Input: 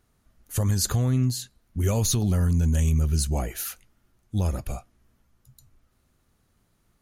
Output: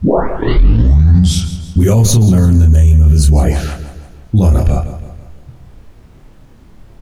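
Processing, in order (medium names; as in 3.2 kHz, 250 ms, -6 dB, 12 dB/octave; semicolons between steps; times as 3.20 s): tape start-up on the opening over 1.69 s; level-controlled noise filter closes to 470 Hz, open at -23 dBFS; tilt shelf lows +5 dB, about 690 Hz; added noise brown -56 dBFS; doubling 27 ms -3 dB; feedback delay 164 ms, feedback 47%, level -13.5 dB; loudness maximiser +16.5 dB; trim -1 dB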